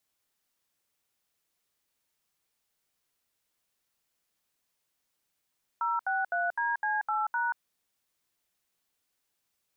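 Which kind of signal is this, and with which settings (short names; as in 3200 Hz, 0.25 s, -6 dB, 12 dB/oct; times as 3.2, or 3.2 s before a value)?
DTMF "063DC8#", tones 0.183 s, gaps 72 ms, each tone -29 dBFS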